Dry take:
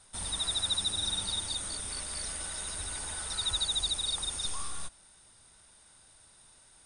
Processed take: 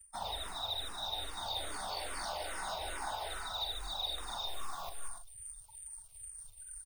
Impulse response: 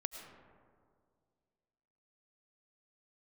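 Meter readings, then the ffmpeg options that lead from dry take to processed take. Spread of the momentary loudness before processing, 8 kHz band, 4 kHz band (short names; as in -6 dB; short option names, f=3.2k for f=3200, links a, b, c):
7 LU, -11.0 dB, -7.5 dB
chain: -filter_complex "[0:a]acrossover=split=5100[a][b];[b]acompressor=threshold=-50dB:ratio=4:attack=1:release=60[c];[a][c]amix=inputs=2:normalize=0,afftfilt=real='re*gte(hypot(re,im),0.00316)':imag='im*gte(hypot(re,im),0.00316)':win_size=1024:overlap=0.75,acrossover=split=110[d][e];[e]alimiter=level_in=7.5dB:limit=-24dB:level=0:latency=1:release=312,volume=-7.5dB[f];[d][f]amix=inputs=2:normalize=0,equalizer=f=760:w=1.3:g=15,areverse,acompressor=threshold=-50dB:ratio=16,areverse,asplit=2[g][h];[h]adelay=43,volume=-8dB[i];[g][i]amix=inputs=2:normalize=0,acrusher=bits=4:mode=log:mix=0:aa=0.000001,equalizer=f=120:w=0.57:g=-9.5,aecho=1:1:189.5|291.5:0.447|0.282,asplit=2[j][k];[k]afreqshift=-2.4[l];[j][l]amix=inputs=2:normalize=1,volume=16dB"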